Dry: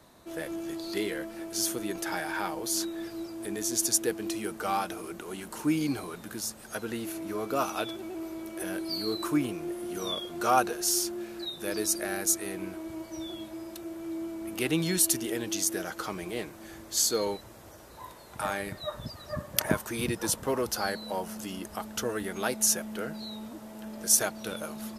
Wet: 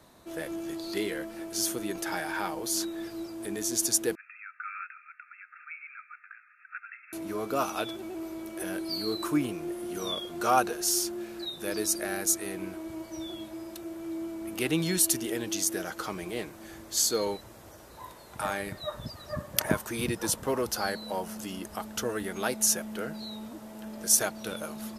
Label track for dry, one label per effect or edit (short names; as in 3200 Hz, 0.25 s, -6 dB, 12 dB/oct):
4.150000	7.130000	brick-wall FIR band-pass 1200–2700 Hz